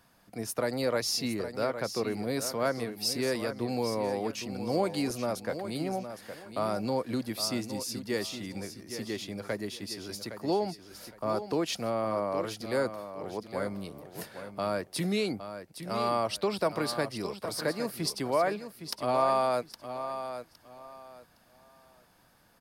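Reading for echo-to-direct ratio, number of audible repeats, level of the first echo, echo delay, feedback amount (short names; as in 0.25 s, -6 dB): -9.5 dB, 3, -10.0 dB, 0.813 s, 24%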